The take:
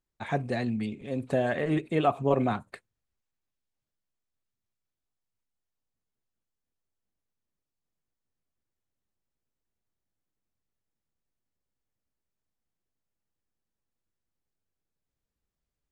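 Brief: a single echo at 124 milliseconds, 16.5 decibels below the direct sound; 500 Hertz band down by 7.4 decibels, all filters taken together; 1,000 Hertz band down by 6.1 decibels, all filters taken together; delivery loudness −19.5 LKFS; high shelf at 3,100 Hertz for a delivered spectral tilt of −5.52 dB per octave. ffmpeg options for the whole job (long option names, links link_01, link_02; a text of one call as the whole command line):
ffmpeg -i in.wav -af "equalizer=frequency=500:width_type=o:gain=-8,equalizer=frequency=1000:width_type=o:gain=-4,highshelf=frequency=3100:gain=-7.5,aecho=1:1:124:0.15,volume=13dB" out.wav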